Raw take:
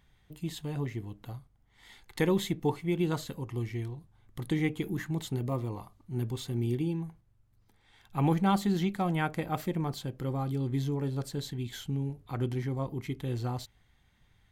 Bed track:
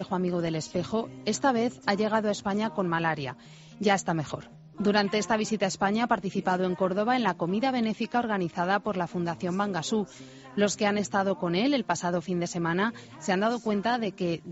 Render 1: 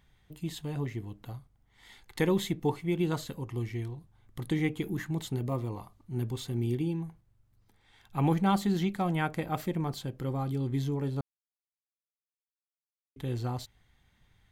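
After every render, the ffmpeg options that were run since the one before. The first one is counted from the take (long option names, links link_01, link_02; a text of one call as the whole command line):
ffmpeg -i in.wav -filter_complex "[0:a]asplit=3[link_01][link_02][link_03];[link_01]atrim=end=11.21,asetpts=PTS-STARTPTS,afade=type=out:start_time=11.206:duration=0.004:curve=hsin[link_04];[link_02]atrim=start=11.21:end=13.16,asetpts=PTS-STARTPTS,volume=0[link_05];[link_03]atrim=start=13.16,asetpts=PTS-STARTPTS,afade=type=in:duration=0.004:curve=hsin[link_06];[link_04][link_05][link_06]concat=n=3:v=0:a=1" out.wav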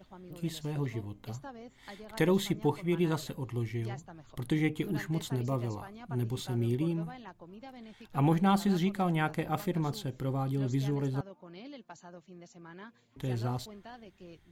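ffmpeg -i in.wav -i bed.wav -filter_complex "[1:a]volume=-22dB[link_01];[0:a][link_01]amix=inputs=2:normalize=0" out.wav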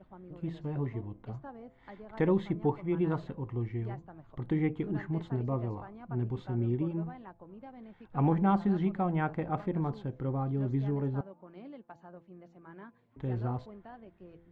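ffmpeg -i in.wav -af "lowpass=1500,bandreject=frequency=169.3:width_type=h:width=4,bandreject=frequency=338.6:width_type=h:width=4,bandreject=frequency=507.9:width_type=h:width=4,bandreject=frequency=677.2:width_type=h:width=4,bandreject=frequency=846.5:width_type=h:width=4,bandreject=frequency=1015.8:width_type=h:width=4" out.wav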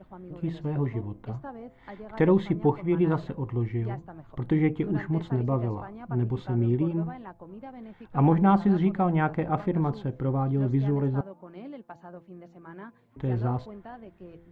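ffmpeg -i in.wav -af "volume=6dB" out.wav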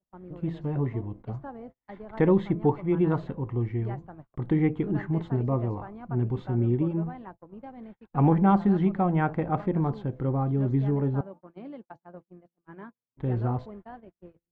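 ffmpeg -i in.wav -af "agate=range=-39dB:threshold=-43dB:ratio=16:detection=peak,highshelf=frequency=3200:gain=-8" out.wav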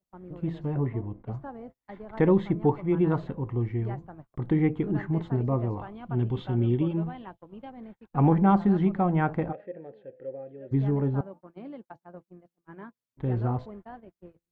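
ffmpeg -i in.wav -filter_complex "[0:a]asettb=1/sr,asplit=3[link_01][link_02][link_03];[link_01]atrim=end=0.744[link_04];[link_02]atrim=start=0.74:end=1.31,asetpts=PTS-STARTPTS,afade=type=in:duration=0.004:curve=qsin,afade=type=out:start_time=0.566:duration=0.004:curve=qsin,lowpass=2900[link_05];[link_03]atrim=start=1.306[link_06];[link_04][link_05]acrossfade=duration=0.004:curve1=hsin:curve2=qsin[link_07];[link_07][link_06]acrossfade=duration=0.004:curve1=qsin:curve2=hsin,asettb=1/sr,asplit=3[link_08][link_09][link_10];[link_08]atrim=end=5.794[link_11];[link_09]atrim=start=5.79:end=7.7,asetpts=PTS-STARTPTS,afade=type=in:duration=0.004:curve=qsin,afade=type=out:start_time=1.906:duration=0.004:curve=qsin,equalizer=frequency=3200:width=2.4:gain=13[link_12];[link_10]atrim=start=7.696[link_13];[link_11][link_12]acrossfade=duration=0.004:curve1=hsin:curve2=qsin[link_14];[link_14][link_13]acrossfade=duration=0.004:curve1=qsin:curve2=hsin,asplit=3[link_15][link_16][link_17];[link_15]afade=type=out:start_time=9.51:duration=0.02[link_18];[link_16]asplit=3[link_19][link_20][link_21];[link_19]bandpass=frequency=530:width_type=q:width=8,volume=0dB[link_22];[link_20]bandpass=frequency=1840:width_type=q:width=8,volume=-6dB[link_23];[link_21]bandpass=frequency=2480:width_type=q:width=8,volume=-9dB[link_24];[link_22][link_23][link_24]amix=inputs=3:normalize=0,afade=type=in:start_time=9.51:duration=0.02,afade=type=out:start_time=10.71:duration=0.02[link_25];[link_17]afade=type=in:start_time=10.71:duration=0.02[link_26];[link_18][link_25][link_26]amix=inputs=3:normalize=0" out.wav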